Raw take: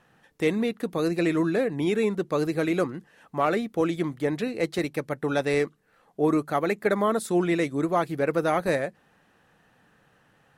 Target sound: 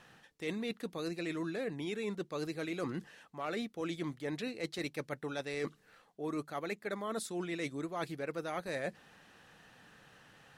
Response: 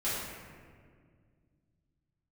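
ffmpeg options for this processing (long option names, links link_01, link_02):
-af "equalizer=frequency=4500:width=0.53:gain=8,areverse,acompressor=threshold=-35dB:ratio=10,areverse"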